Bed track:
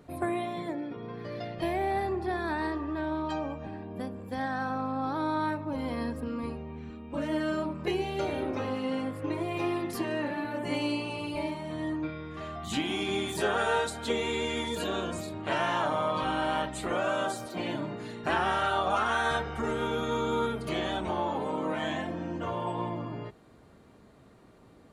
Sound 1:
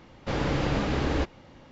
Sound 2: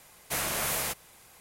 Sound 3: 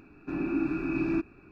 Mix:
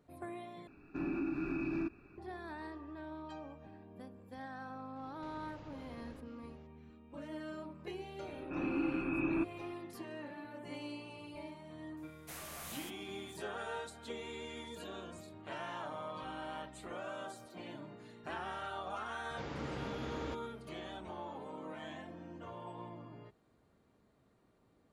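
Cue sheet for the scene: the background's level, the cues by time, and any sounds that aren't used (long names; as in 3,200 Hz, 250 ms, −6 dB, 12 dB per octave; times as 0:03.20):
bed track −14.5 dB
0:00.67: overwrite with 3 −5 dB + brickwall limiter −24 dBFS
0:04.96: mix in 1 −14.5 dB + downward compressor 12 to 1, threshold −36 dBFS
0:08.23: mix in 3 −1 dB + Chebyshev low-pass with heavy ripple 3,700 Hz, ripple 6 dB
0:11.97: mix in 2 −17.5 dB
0:19.10: mix in 1 −15.5 dB + high-pass filter 70 Hz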